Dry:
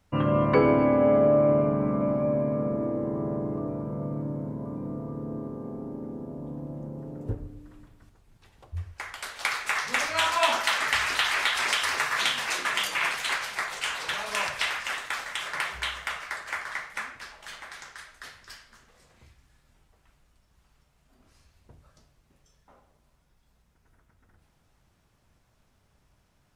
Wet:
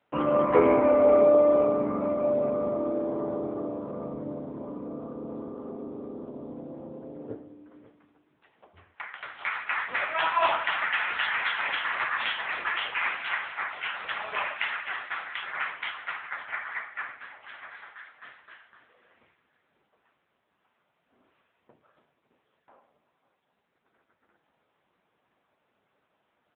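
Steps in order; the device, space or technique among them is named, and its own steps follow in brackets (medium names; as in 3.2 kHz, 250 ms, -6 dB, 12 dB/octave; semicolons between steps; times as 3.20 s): 9.05–11.12 s: high-pass 180 Hz 6 dB/octave; satellite phone (band-pass 310–3000 Hz; delay 549 ms -17.5 dB; trim +3 dB; AMR-NB 6.7 kbps 8 kHz)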